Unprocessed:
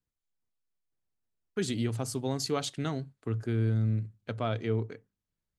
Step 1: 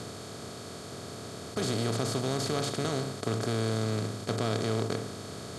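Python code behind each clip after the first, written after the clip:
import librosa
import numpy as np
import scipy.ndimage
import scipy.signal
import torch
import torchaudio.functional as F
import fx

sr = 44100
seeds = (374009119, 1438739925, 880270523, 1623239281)

y = fx.bin_compress(x, sr, power=0.2)
y = y * 10.0 ** (-6.0 / 20.0)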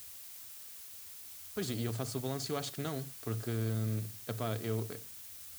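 y = fx.bin_expand(x, sr, power=3.0)
y = fx.dmg_noise_colour(y, sr, seeds[0], colour='blue', level_db=-49.0)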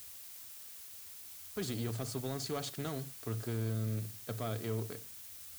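y = fx.leveller(x, sr, passes=1)
y = y * 10.0 ** (-4.5 / 20.0)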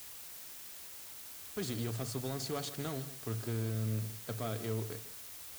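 y = fx.quant_dither(x, sr, seeds[1], bits=8, dither='none')
y = y + 10.0 ** (-15.0 / 20.0) * np.pad(y, (int(155 * sr / 1000.0), 0))[:len(y)]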